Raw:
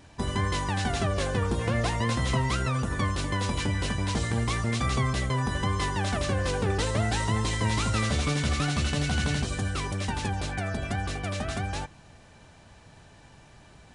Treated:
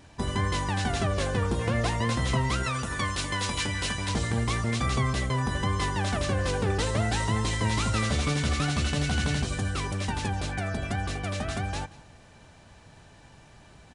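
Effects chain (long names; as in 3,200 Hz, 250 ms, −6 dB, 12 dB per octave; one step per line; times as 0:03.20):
0:02.63–0:04.09: tilt shelving filter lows −5 dB
single-tap delay 180 ms −20.5 dB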